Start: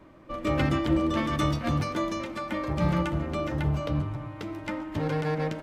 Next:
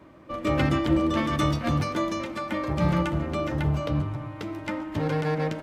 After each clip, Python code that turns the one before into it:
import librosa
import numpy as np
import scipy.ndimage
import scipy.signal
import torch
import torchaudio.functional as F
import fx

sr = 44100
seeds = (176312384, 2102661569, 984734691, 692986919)

y = scipy.signal.sosfilt(scipy.signal.butter(2, 50.0, 'highpass', fs=sr, output='sos'), x)
y = y * 10.0 ** (2.0 / 20.0)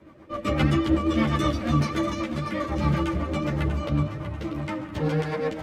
y = fx.rotary(x, sr, hz=8.0)
y = fx.echo_feedback(y, sr, ms=641, feedback_pct=37, wet_db=-10)
y = fx.ensemble(y, sr)
y = y * 10.0 ** (5.5 / 20.0)